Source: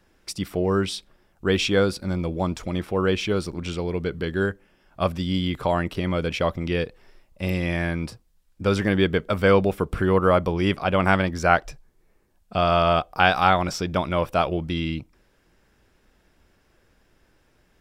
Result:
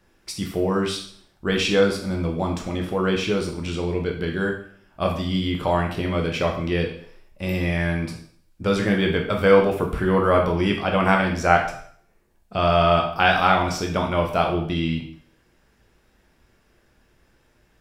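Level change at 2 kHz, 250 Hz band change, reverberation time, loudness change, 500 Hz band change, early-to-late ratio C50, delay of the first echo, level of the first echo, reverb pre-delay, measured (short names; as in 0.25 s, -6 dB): +1.5 dB, +1.5 dB, 0.60 s, +1.5 dB, +1.5 dB, 6.5 dB, none, none, 5 ms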